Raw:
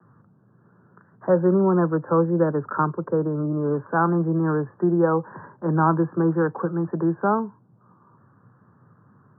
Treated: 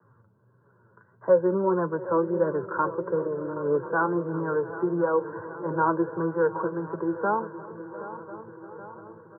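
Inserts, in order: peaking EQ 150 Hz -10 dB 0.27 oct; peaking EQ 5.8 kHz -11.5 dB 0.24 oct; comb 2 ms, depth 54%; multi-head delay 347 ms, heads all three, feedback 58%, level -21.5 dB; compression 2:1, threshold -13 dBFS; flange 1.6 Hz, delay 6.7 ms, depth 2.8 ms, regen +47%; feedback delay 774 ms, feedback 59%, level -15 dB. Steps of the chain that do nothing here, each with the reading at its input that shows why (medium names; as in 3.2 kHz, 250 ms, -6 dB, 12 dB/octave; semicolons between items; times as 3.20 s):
peaking EQ 5.8 kHz: input has nothing above 1.7 kHz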